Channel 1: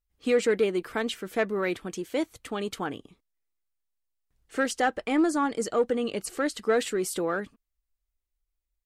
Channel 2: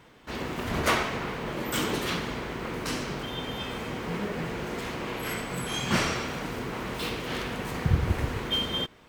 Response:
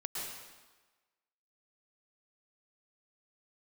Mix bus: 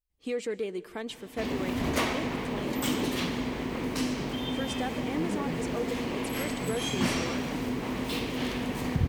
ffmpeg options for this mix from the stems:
-filter_complex "[0:a]volume=-6.5dB,asplit=2[a][b];[b]volume=-20dB[c];[1:a]equalizer=f=260:w=6.6:g=11.5,adelay=1100,volume=2.5dB[d];[2:a]atrim=start_sample=2205[e];[c][e]afir=irnorm=-1:irlink=0[f];[a][d][f]amix=inputs=3:normalize=0,equalizer=f=1.4k:w=3:g=-7,acompressor=threshold=-33dB:ratio=1.5"

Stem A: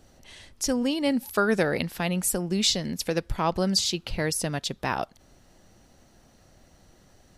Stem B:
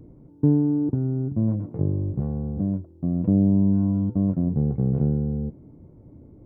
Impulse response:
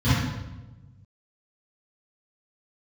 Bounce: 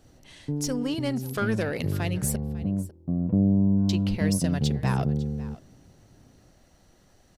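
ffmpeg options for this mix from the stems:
-filter_complex "[0:a]asoftclip=type=tanh:threshold=-18.5dB,volume=-2.5dB,asplit=3[a][b][c];[a]atrim=end=2.36,asetpts=PTS-STARTPTS,afade=t=out:st=2.356:d=0.004:c=hsin[d];[b]atrim=start=2.36:end=3.89,asetpts=PTS-STARTPTS,volume=0[e];[c]atrim=start=3.89,asetpts=PTS-STARTPTS,afade=t=in:d=0.004:c=hsin[f];[d][e][f]concat=n=3:v=0:a=1,asplit=2[g][h];[h]volume=-19dB[i];[1:a]equalizer=f=320:t=o:w=0.29:g=-4.5,dynaudnorm=f=370:g=9:m=11dB,adelay=50,volume=-10.5dB[j];[i]aecho=0:1:550:1[k];[g][j][k]amix=inputs=3:normalize=0"

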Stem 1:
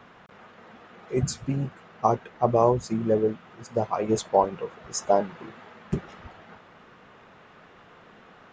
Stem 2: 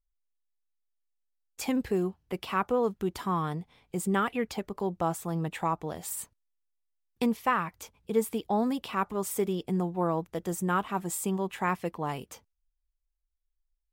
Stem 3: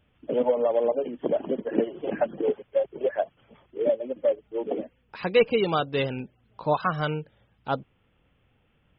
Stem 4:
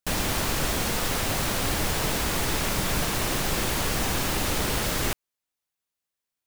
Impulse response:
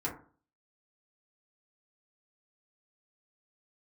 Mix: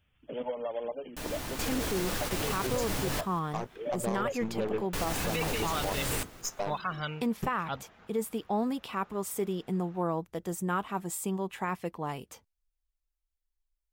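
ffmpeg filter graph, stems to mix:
-filter_complex "[0:a]highshelf=f=6.2k:g=10.5,alimiter=limit=-13.5dB:level=0:latency=1:release=212,aeval=exprs='0.211*(cos(1*acos(clip(val(0)/0.211,-1,1)))-cos(1*PI/2))+0.0237*(cos(3*acos(clip(val(0)/0.211,-1,1)))-cos(3*PI/2))+0.0188*(cos(8*acos(clip(val(0)/0.211,-1,1)))-cos(8*PI/2))':c=same,adelay=1500,volume=-7dB[a];[1:a]volume=-2.5dB,asplit=2[b][c];[2:a]equalizer=f=380:t=o:w=2.9:g=-11.5,volume=-2dB[d];[3:a]adelay=1100,volume=-8dB,asplit=3[e][f][g];[e]atrim=end=3.21,asetpts=PTS-STARTPTS,afade=t=out:st=3.206:d=0.004:c=hsin[h];[f]atrim=start=3.21:end=4.93,asetpts=PTS-STARTPTS,volume=0[i];[g]atrim=start=4.93,asetpts=PTS-STARTPTS,afade=t=in:d=0.004:c=hsin[j];[h][i][j]concat=n=3:v=0:a=1,asplit=3[k][l][m];[l]volume=-14dB[n];[m]volume=-20.5dB[o];[c]apad=whole_len=333409[p];[k][p]sidechaingate=range=-8dB:threshold=-57dB:ratio=16:detection=peak[q];[4:a]atrim=start_sample=2205[r];[n][r]afir=irnorm=-1:irlink=0[s];[o]aecho=0:1:184|368|552|736|920|1104|1288:1|0.49|0.24|0.118|0.0576|0.0282|0.0138[t];[a][b][d][q][s][t]amix=inputs=6:normalize=0,alimiter=limit=-21dB:level=0:latency=1:release=34"

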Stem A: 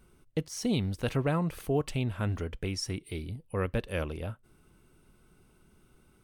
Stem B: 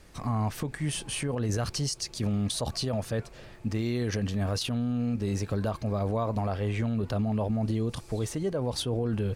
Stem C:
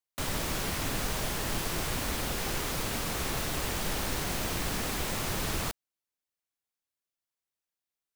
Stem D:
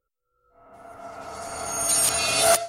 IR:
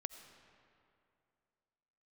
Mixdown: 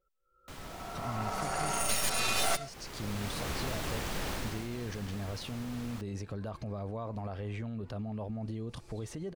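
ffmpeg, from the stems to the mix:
-filter_complex "[1:a]adelay=800,volume=-1dB[a];[2:a]adelay=300,volume=-2.5dB,afade=t=in:st=2.85:d=0.63:silence=0.298538,afade=t=out:st=4.32:d=0.36:silence=0.281838[b];[3:a]aecho=1:1:5.3:0.7,aeval=exprs='0.501*(cos(1*acos(clip(val(0)/0.501,-1,1)))-cos(1*PI/2))+0.141*(cos(6*acos(clip(val(0)/0.501,-1,1)))-cos(6*PI/2))':c=same,volume=0dB[c];[a]alimiter=level_in=7dB:limit=-24dB:level=0:latency=1:release=195,volume=-7dB,volume=0dB[d];[b][c][d]amix=inputs=3:normalize=0,highshelf=f=6.7k:g=-7.5,acompressor=threshold=-28dB:ratio=3"

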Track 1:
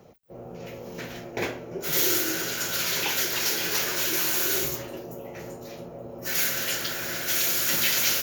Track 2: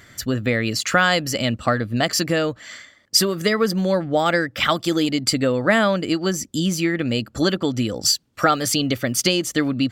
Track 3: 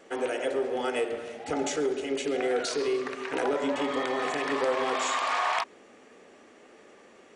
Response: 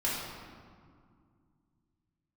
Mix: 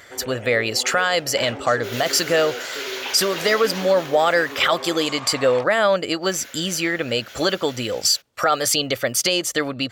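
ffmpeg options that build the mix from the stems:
-filter_complex "[0:a]dynaudnorm=f=270:g=7:m=9dB,asplit=2[a][b];[b]highpass=f=720:p=1,volume=13dB,asoftclip=type=tanh:threshold=-3dB[c];[a][c]amix=inputs=2:normalize=0,lowpass=f=1.9k:p=1,volume=-6dB,equalizer=f=3.4k:t=o:w=0.77:g=5,volume=-13dB,afade=t=out:st=3.54:d=0.62:silence=0.316228[d];[1:a]volume=3dB[e];[2:a]volume=-6.5dB[f];[d][e]amix=inputs=2:normalize=0,lowshelf=f=370:t=q:w=1.5:g=-9,alimiter=limit=-8dB:level=0:latency=1:release=12,volume=0dB[g];[f][g]amix=inputs=2:normalize=0"

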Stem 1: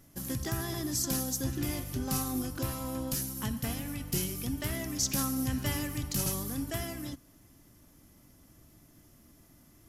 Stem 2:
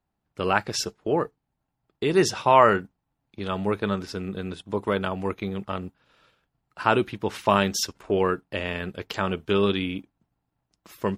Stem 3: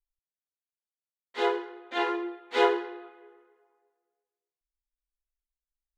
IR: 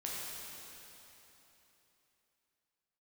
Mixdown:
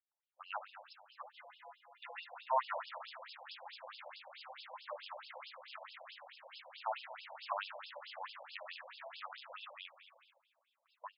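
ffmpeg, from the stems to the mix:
-filter_complex "[0:a]bandreject=f=50:t=h:w=6,bandreject=f=100:t=h:w=6,bandreject=f=150:t=h:w=6,bandreject=f=200:t=h:w=6,bandreject=f=250:t=h:w=6,bandreject=f=300:t=h:w=6,bandreject=f=350:t=h:w=6,acrusher=bits=3:dc=4:mix=0:aa=0.000001,adelay=2300,volume=-1.5dB,asplit=3[a][b][c];[b]volume=-8.5dB[d];[c]volume=-8dB[e];[1:a]volume=-15dB,asplit=4[f][g][h][i];[g]volume=-14.5dB[j];[h]volume=-9.5dB[k];[2:a]lowpass=3.1k,acompressor=mode=upward:threshold=-28dB:ratio=2.5,volume=-14.5dB,asplit=3[l][m][n];[m]volume=-13.5dB[o];[n]volume=-7dB[p];[i]apad=whole_len=263680[q];[l][q]sidechaingate=range=-33dB:threshold=-59dB:ratio=16:detection=peak[r];[a][r]amix=inputs=2:normalize=0,flanger=delay=18.5:depth=2.9:speed=0.26,acompressor=threshold=-42dB:ratio=6,volume=0dB[s];[3:a]atrim=start_sample=2205[t];[d][j][o]amix=inputs=3:normalize=0[u];[u][t]afir=irnorm=-1:irlink=0[v];[e][k][p]amix=inputs=3:normalize=0,aecho=0:1:117|234|351|468|585|702|819|936|1053:1|0.57|0.325|0.185|0.106|0.0602|0.0343|0.0195|0.0111[w];[f][s][v][w]amix=inputs=4:normalize=0,agate=range=-6dB:threshold=-56dB:ratio=16:detection=peak,afftfilt=real='re*between(b*sr/1024,690*pow(3800/690,0.5+0.5*sin(2*PI*4.6*pts/sr))/1.41,690*pow(3800/690,0.5+0.5*sin(2*PI*4.6*pts/sr))*1.41)':imag='im*between(b*sr/1024,690*pow(3800/690,0.5+0.5*sin(2*PI*4.6*pts/sr))/1.41,690*pow(3800/690,0.5+0.5*sin(2*PI*4.6*pts/sr))*1.41)':win_size=1024:overlap=0.75"

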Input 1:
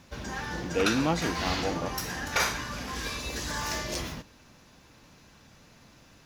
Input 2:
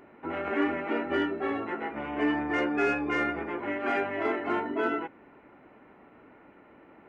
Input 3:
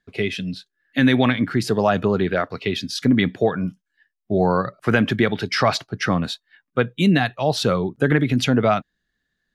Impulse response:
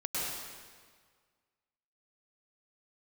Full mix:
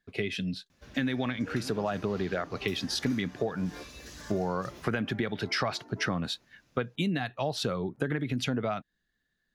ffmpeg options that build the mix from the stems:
-filter_complex "[0:a]equalizer=f=920:t=o:w=0.37:g=-6,adelay=700,volume=-12dB[a];[1:a]lowpass=1.4k,adelay=1200,volume=-15.5dB[b];[2:a]dynaudnorm=f=270:g=17:m=11.5dB,volume=-4dB,asplit=2[c][d];[d]apad=whole_len=365175[e];[b][e]sidechaingate=range=-33dB:threshold=-43dB:ratio=16:detection=peak[f];[a][f][c]amix=inputs=3:normalize=0,acompressor=threshold=-27dB:ratio=6"

